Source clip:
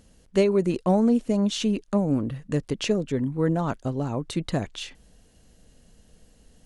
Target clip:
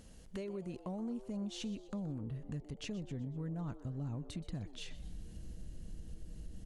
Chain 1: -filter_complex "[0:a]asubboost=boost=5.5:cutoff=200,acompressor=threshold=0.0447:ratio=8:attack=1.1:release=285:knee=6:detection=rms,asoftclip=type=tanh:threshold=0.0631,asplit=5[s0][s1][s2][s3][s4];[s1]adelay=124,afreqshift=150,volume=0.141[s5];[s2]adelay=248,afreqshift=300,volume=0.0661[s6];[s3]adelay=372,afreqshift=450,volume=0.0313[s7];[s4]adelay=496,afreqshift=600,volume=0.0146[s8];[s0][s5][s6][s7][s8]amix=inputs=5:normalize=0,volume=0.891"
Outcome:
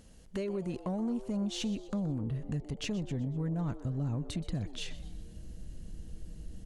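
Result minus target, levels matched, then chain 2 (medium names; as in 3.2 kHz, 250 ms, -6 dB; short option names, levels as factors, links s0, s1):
compression: peak gain reduction -8 dB
-filter_complex "[0:a]asubboost=boost=5.5:cutoff=200,acompressor=threshold=0.0158:ratio=8:attack=1.1:release=285:knee=6:detection=rms,asoftclip=type=tanh:threshold=0.0631,asplit=5[s0][s1][s2][s3][s4];[s1]adelay=124,afreqshift=150,volume=0.141[s5];[s2]adelay=248,afreqshift=300,volume=0.0661[s6];[s3]adelay=372,afreqshift=450,volume=0.0313[s7];[s4]adelay=496,afreqshift=600,volume=0.0146[s8];[s0][s5][s6][s7][s8]amix=inputs=5:normalize=0,volume=0.891"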